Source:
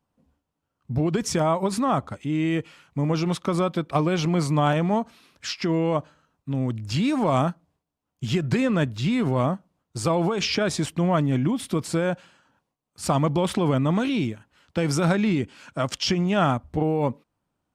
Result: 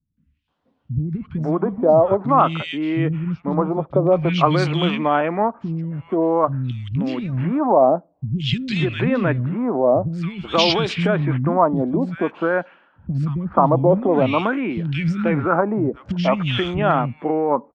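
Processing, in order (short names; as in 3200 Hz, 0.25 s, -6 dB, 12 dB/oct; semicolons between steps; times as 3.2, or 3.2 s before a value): LFO low-pass sine 0.5 Hz 600–3700 Hz; three bands offset in time lows, highs, mids 0.17/0.48 s, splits 220/2100 Hz; gain +4.5 dB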